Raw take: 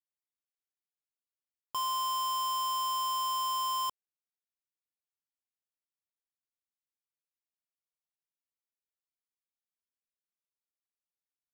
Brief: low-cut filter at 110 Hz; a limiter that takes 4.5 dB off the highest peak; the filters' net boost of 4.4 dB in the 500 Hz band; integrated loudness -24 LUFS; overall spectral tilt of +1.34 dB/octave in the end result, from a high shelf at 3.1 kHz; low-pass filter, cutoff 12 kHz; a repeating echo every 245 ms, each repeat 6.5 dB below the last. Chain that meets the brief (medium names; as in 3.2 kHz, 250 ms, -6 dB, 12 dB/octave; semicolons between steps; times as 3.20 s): high-pass 110 Hz; low-pass 12 kHz; peaking EQ 500 Hz +5.5 dB; treble shelf 3.1 kHz +9 dB; peak limiter -26 dBFS; feedback delay 245 ms, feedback 47%, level -6.5 dB; trim +7 dB